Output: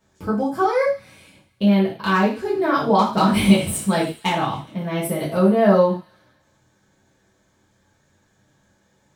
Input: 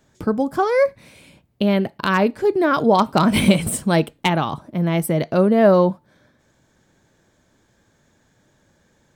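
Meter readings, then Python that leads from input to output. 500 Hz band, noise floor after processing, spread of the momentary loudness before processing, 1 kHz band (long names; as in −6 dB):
−2.0 dB, −63 dBFS, 8 LU, 0.0 dB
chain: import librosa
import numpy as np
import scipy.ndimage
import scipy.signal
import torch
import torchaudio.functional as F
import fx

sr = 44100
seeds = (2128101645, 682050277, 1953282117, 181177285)

y = fx.echo_wet_highpass(x, sr, ms=139, feedback_pct=54, hz=2500.0, wet_db=-16.0)
y = fx.rev_gated(y, sr, seeds[0], gate_ms=140, shape='falling', drr_db=-7.5)
y = y * librosa.db_to_amplitude(-9.5)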